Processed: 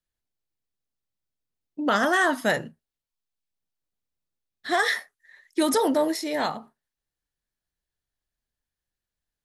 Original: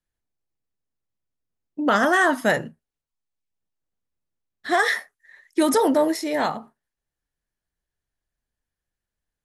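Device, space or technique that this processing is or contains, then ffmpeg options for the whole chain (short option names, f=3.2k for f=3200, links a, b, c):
presence and air boost: -af "equalizer=f=4k:t=o:w=0.99:g=4.5,highshelf=f=9.9k:g=3.5,volume=-3.5dB"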